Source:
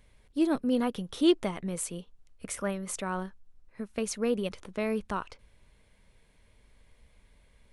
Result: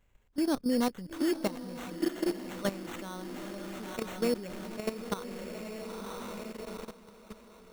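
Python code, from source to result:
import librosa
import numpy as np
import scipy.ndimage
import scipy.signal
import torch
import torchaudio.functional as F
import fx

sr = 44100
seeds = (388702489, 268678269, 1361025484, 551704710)

y = fx.echo_diffused(x, sr, ms=924, feedback_pct=52, wet_db=-4)
y = fx.sample_hold(y, sr, seeds[0], rate_hz=4900.0, jitter_pct=0)
y = fx.level_steps(y, sr, step_db=14)
y = F.gain(torch.from_numpy(y), 1.5).numpy()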